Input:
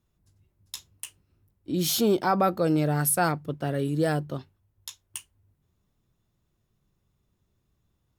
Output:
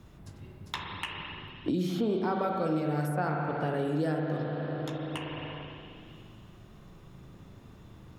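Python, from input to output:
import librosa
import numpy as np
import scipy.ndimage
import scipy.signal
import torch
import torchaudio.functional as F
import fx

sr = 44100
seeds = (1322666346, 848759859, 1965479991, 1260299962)

y = fx.lowpass(x, sr, hz=2800.0, slope=6)
y = fx.rev_spring(y, sr, rt60_s=2.0, pass_ms=(38, 54), chirp_ms=40, drr_db=1.0)
y = fx.band_squash(y, sr, depth_pct=100)
y = y * librosa.db_to_amplitude(-7.5)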